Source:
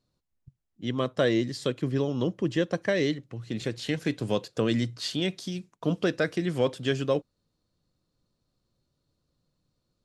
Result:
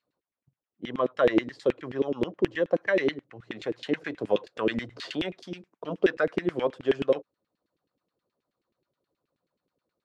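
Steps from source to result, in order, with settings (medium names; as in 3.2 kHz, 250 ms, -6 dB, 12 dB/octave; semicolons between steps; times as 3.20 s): LFO band-pass saw down 9.4 Hz 290–2600 Hz; 4.90–5.39 s: three bands compressed up and down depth 40%; trim +8 dB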